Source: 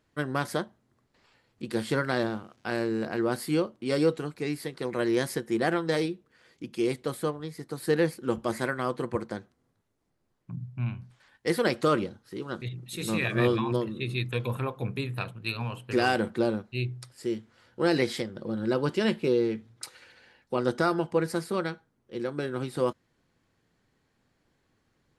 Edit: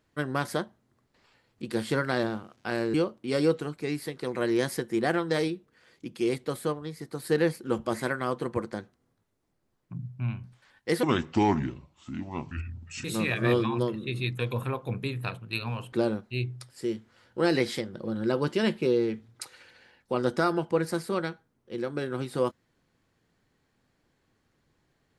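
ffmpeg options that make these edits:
ffmpeg -i in.wav -filter_complex "[0:a]asplit=5[link_01][link_02][link_03][link_04][link_05];[link_01]atrim=end=2.942[link_06];[link_02]atrim=start=3.518:end=11.614[link_07];[link_03]atrim=start=11.61:end=12.98,asetpts=PTS-STARTPTS,asetrate=29988,aresample=44100[link_08];[link_04]atrim=start=12.976:end=15.862[link_09];[link_05]atrim=start=16.338[link_10];[link_06][link_07]acrossfade=duration=0.004:curve1=hsin:curve2=hsin[link_11];[link_11][link_08]acrossfade=duration=0.004:curve1=hsin:curve2=hsin[link_12];[link_12][link_09]acrossfade=duration=0.004:curve1=hsin:curve2=hsin[link_13];[link_13][link_10]acrossfade=duration=0.004:curve1=hsin:curve2=hsin" out.wav

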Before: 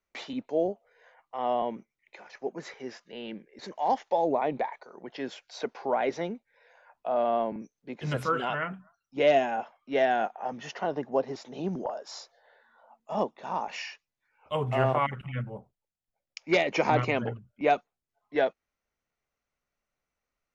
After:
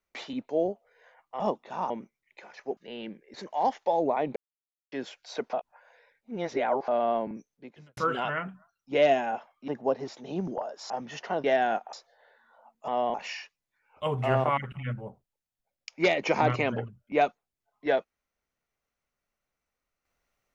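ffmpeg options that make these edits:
ffmpeg -i in.wav -filter_complex "[0:a]asplit=15[link_01][link_02][link_03][link_04][link_05][link_06][link_07][link_08][link_09][link_10][link_11][link_12][link_13][link_14][link_15];[link_01]atrim=end=1.402[link_16];[link_02]atrim=start=13.128:end=13.632[link_17];[link_03]atrim=start=1.658:end=2.532[link_18];[link_04]atrim=start=3.018:end=4.61,asetpts=PTS-STARTPTS,afade=type=out:start_time=1.588:duration=0.004:curve=hsin[link_19];[link_05]atrim=start=4.61:end=5.17,asetpts=PTS-STARTPTS,volume=0[link_20];[link_06]atrim=start=5.17:end=5.782,asetpts=PTS-STARTPTS,afade=type=in:duration=0.004:curve=hsin[link_21];[link_07]atrim=start=5.778:end=7.132,asetpts=PTS-STARTPTS,areverse[link_22];[link_08]atrim=start=7.128:end=8.22,asetpts=PTS-STARTPTS,afade=type=out:start_time=0.632:duration=0.46:curve=qua[link_23];[link_09]atrim=start=8.22:end=9.932,asetpts=PTS-STARTPTS,afade=type=in:duration=0.004:curve=hsin[link_24];[link_10]atrim=start=10.958:end=12.182[link_25];[link_11]atrim=start=10.418:end=10.962[link_26];[link_12]atrim=start=9.928:end=10.422[link_27];[link_13]atrim=start=12.178:end=13.132[link_28];[link_14]atrim=start=1.398:end=1.662[link_29];[link_15]atrim=start=13.628[link_30];[link_16][link_17]acrossfade=duration=0.004:curve1=hsin:curve2=hsin[link_31];[link_31][link_18]acrossfade=duration=0.004:curve1=hsin:curve2=hsin[link_32];[link_19][link_20][link_21]concat=n=3:v=0:a=1[link_33];[link_32][link_33]acrossfade=duration=0.004:curve1=hsin:curve2=hsin[link_34];[link_34][link_22]acrossfade=duration=0.004:curve1=hsin:curve2=hsin[link_35];[link_23][link_24]concat=n=2:v=0:a=1[link_36];[link_35][link_36]acrossfade=duration=0.004:curve1=hsin:curve2=hsin[link_37];[link_37][link_25]acrossfade=duration=0.004:curve1=hsin:curve2=hsin[link_38];[link_38][link_26]acrossfade=duration=0.004:curve1=hsin:curve2=hsin[link_39];[link_39][link_27]acrossfade=duration=0.004:curve1=hsin:curve2=hsin[link_40];[link_40][link_28]acrossfade=duration=0.004:curve1=hsin:curve2=hsin[link_41];[link_41][link_29]acrossfade=duration=0.004:curve1=hsin:curve2=hsin[link_42];[link_42][link_30]acrossfade=duration=0.004:curve1=hsin:curve2=hsin" out.wav

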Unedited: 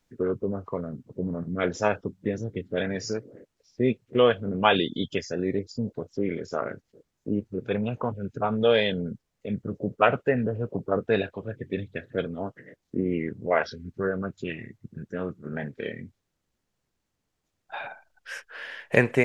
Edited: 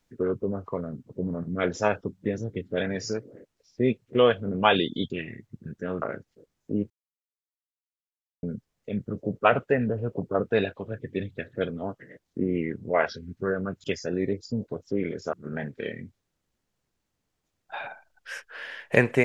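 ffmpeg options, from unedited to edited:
ffmpeg -i in.wav -filter_complex "[0:a]asplit=7[link_01][link_02][link_03][link_04][link_05][link_06][link_07];[link_01]atrim=end=5.102[link_08];[link_02]atrim=start=14.408:end=15.332[link_09];[link_03]atrim=start=6.588:end=7.47,asetpts=PTS-STARTPTS,afade=type=out:start_time=0.878:duration=0.004:curve=hsin[link_10];[link_04]atrim=start=7.47:end=9,asetpts=PTS-STARTPTS,volume=0[link_11];[link_05]atrim=start=9:end=14.412,asetpts=PTS-STARTPTS,afade=type=in:duration=0.004:curve=hsin[link_12];[link_06]atrim=start=5.098:end=6.592[link_13];[link_07]atrim=start=15.328[link_14];[link_08][link_09]acrossfade=duration=0.004:curve1=hsin:curve2=hsin[link_15];[link_10][link_11][link_12]concat=n=3:v=0:a=1[link_16];[link_15][link_16]acrossfade=duration=0.004:curve1=hsin:curve2=hsin[link_17];[link_17][link_13]acrossfade=duration=0.004:curve1=hsin:curve2=hsin[link_18];[link_18][link_14]acrossfade=duration=0.004:curve1=hsin:curve2=hsin" out.wav

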